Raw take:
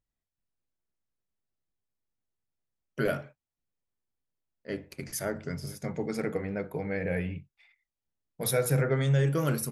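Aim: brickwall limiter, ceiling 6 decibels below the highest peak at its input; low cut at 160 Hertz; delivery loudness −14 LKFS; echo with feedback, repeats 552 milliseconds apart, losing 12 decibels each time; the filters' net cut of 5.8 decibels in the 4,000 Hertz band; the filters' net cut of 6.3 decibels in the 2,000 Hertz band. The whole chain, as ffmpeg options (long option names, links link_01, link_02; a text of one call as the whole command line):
ffmpeg -i in.wav -af "highpass=160,equalizer=frequency=2000:width_type=o:gain=-7.5,equalizer=frequency=4000:width_type=o:gain=-5.5,alimiter=limit=-22.5dB:level=0:latency=1,aecho=1:1:552|1104|1656:0.251|0.0628|0.0157,volume=20.5dB" out.wav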